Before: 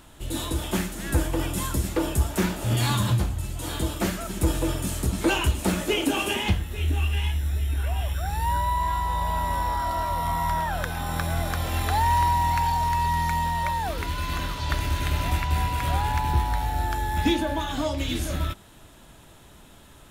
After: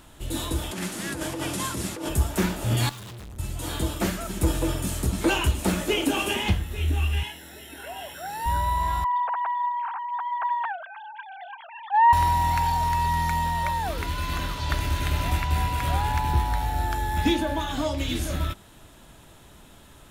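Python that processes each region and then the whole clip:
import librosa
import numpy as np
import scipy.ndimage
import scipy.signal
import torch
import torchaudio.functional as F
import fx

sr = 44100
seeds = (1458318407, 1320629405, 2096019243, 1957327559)

y = fx.chain(x, sr, fx.delta_mod(bps=64000, step_db=-32.0),
    fx.highpass(hz=140.0, slope=12),
    fx.over_compress(threshold_db=-30.0, ratio=-1.0), at=(0.71, 2.09))
y = fx.chain(y, sr, fx.dynamic_eq(hz=2800.0, q=1.0, threshold_db=-44.0, ratio=4.0, max_db=5),
    fx.tube_stage(drive_db=39.0, bias=0.75), at=(2.89, 3.39))
y = fx.chain(y, sr, fx.highpass(hz=260.0, slope=12),
    fx.notch_comb(f0_hz=1200.0), at=(7.23, 8.46))
y = fx.chain(y, sr, fx.sine_speech(),
    fx.doppler_dist(depth_ms=0.42), at=(9.04, 12.13))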